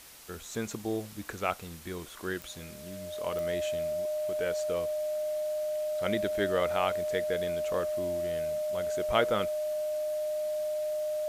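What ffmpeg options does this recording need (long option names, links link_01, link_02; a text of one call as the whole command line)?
ffmpeg -i in.wav -af "adeclick=threshold=4,bandreject=frequency=610:width=30,afftdn=noise_reduction=30:noise_floor=-45" out.wav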